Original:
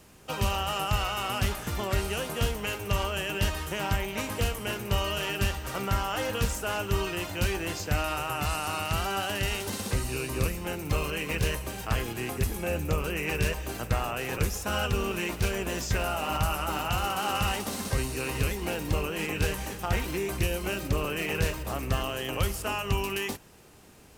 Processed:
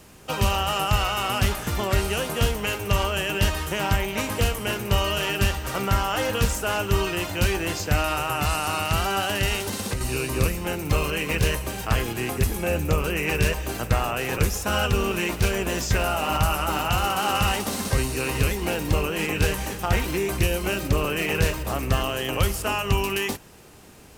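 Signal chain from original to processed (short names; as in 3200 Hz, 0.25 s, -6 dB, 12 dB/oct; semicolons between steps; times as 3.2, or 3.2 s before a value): 9.59–10.01 compressor 6:1, threshold -30 dBFS, peak gain reduction 7.5 dB; gain +5.5 dB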